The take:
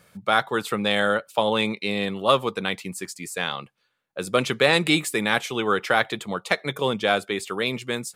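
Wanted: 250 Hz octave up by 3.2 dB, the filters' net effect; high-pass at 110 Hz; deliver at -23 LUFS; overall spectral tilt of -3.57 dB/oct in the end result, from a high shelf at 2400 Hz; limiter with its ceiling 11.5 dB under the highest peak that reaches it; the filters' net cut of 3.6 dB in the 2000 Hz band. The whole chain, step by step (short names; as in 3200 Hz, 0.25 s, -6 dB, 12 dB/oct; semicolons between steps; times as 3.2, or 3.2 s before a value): HPF 110 Hz; bell 250 Hz +4.5 dB; bell 2000 Hz -8 dB; high shelf 2400 Hz +6 dB; gain +4 dB; limiter -10 dBFS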